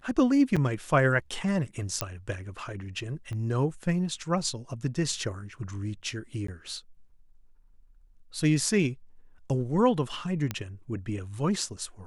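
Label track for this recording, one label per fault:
0.560000	0.570000	dropout 5.9 ms
2.010000	2.010000	pop -10 dBFS
3.330000	3.330000	pop -27 dBFS
6.470000	6.480000	dropout 14 ms
10.510000	10.510000	pop -15 dBFS

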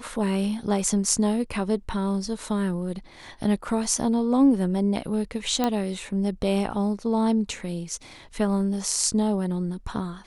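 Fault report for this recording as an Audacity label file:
5.640000	5.640000	pop -10 dBFS

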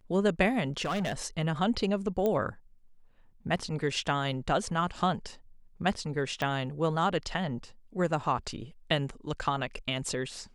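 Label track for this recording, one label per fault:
0.810000	1.260000	clipped -27.5 dBFS
2.260000	2.260000	pop -17 dBFS
6.420000	6.420000	pop -17 dBFS

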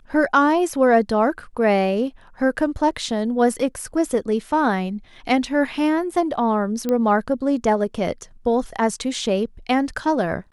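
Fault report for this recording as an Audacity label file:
6.890000	6.890000	pop -11 dBFS

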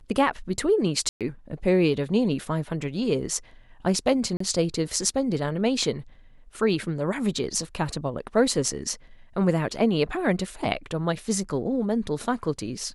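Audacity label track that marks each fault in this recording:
1.090000	1.210000	dropout 117 ms
4.370000	4.400000	dropout 34 ms

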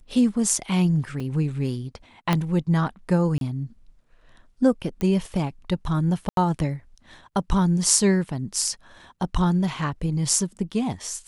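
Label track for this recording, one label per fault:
1.200000	1.200000	dropout 4 ms
2.330000	2.330000	pop -8 dBFS
3.380000	3.410000	dropout 32 ms
5.010000	5.010000	pop -15 dBFS
6.290000	6.370000	dropout 82 ms

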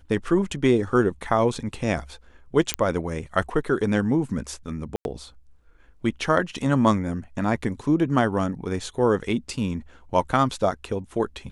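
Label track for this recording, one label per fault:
2.740000	2.740000	pop -4 dBFS
4.960000	5.050000	dropout 91 ms

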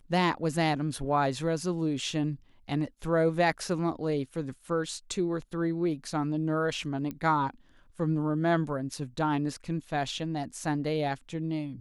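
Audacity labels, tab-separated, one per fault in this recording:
7.110000	7.110000	pop -24 dBFS

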